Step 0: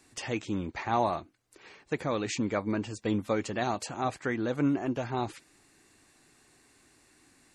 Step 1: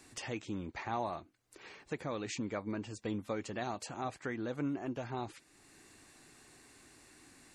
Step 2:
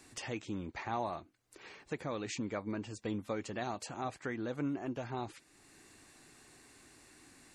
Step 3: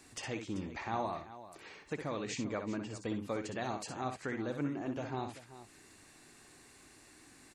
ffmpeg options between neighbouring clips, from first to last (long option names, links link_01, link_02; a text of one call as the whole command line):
ffmpeg -i in.wav -af "acompressor=threshold=-58dB:ratio=1.5,volume=3dB" out.wav
ffmpeg -i in.wav -af anull out.wav
ffmpeg -i in.wav -af "aecho=1:1:62|387:0.422|0.188" out.wav